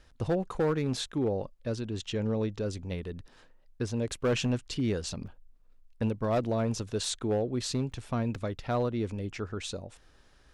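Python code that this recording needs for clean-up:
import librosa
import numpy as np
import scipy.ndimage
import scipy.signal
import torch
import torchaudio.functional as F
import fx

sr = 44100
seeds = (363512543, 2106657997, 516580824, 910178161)

y = fx.fix_declip(x, sr, threshold_db=-22.0)
y = fx.fix_interpolate(y, sr, at_s=(5.27, 7.92), length_ms=4.6)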